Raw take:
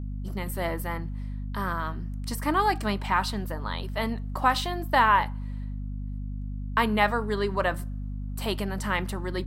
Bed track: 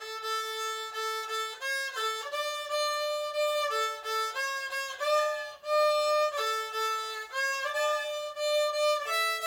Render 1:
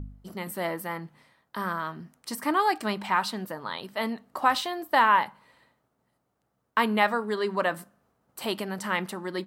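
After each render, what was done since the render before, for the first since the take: de-hum 50 Hz, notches 5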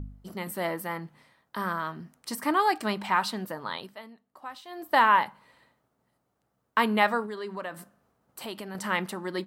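3.76–4.91 dip -18 dB, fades 0.26 s; 7.26–8.75 compressor 2:1, threshold -39 dBFS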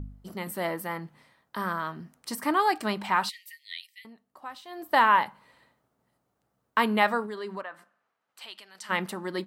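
3.29–4.05 brick-wall FIR high-pass 1800 Hz; 7.61–8.89 band-pass 1200 Hz -> 5000 Hz, Q 0.95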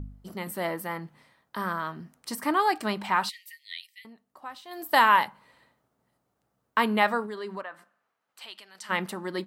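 4.71–5.26 high shelf 3900 Hz +11.5 dB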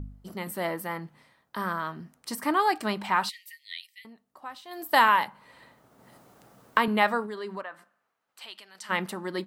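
5.08–6.88 three-band squash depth 70%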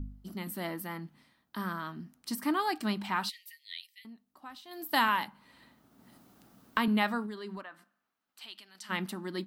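graphic EQ 125/250/500/1000/2000/8000 Hz -6/+5/-11/-5/-5/-5 dB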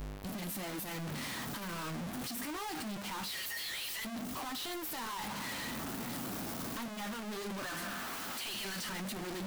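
infinite clipping; flange 1.3 Hz, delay 6.6 ms, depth 6.6 ms, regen -48%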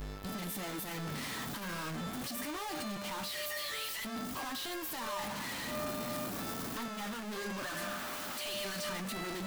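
add bed track -16 dB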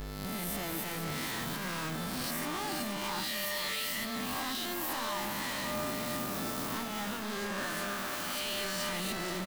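spectral swells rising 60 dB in 1.11 s; echo 0.479 s -7.5 dB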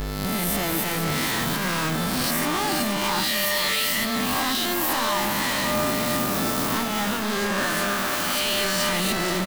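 gain +11.5 dB

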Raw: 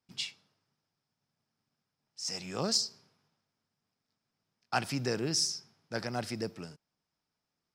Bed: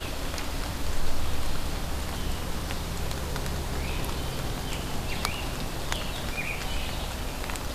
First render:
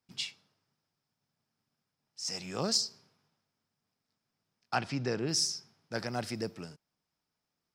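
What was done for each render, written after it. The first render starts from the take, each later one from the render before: 4.75–5.29 air absorption 110 m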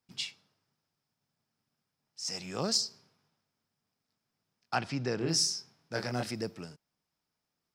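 5.18–6.31 doubler 24 ms -3.5 dB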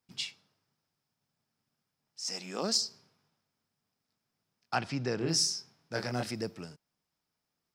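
2.21–2.82 brick-wall FIR high-pass 170 Hz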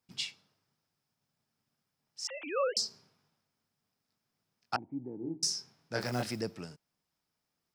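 2.27–2.77 sine-wave speech; 4.76–5.43 vocal tract filter u; 6.01–6.42 block floating point 5-bit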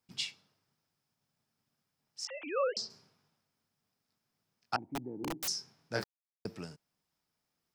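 2.25–2.9 air absorption 130 m; 4.79–5.48 wrapped overs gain 31 dB; 6.04–6.45 mute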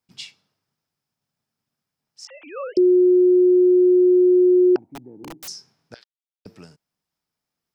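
2.77–4.76 bleep 362 Hz -11 dBFS; 5.94–6.46 band-pass 3400 Hz, Q 3.3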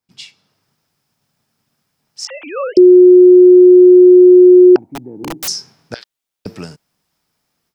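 AGC gain up to 14.5 dB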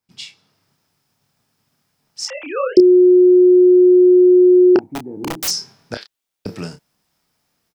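doubler 29 ms -7.5 dB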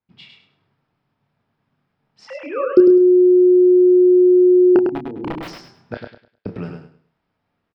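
air absorption 440 m; on a send: feedback echo 0.103 s, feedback 27%, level -5.5 dB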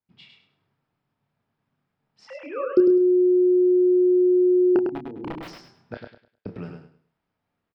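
gain -6.5 dB

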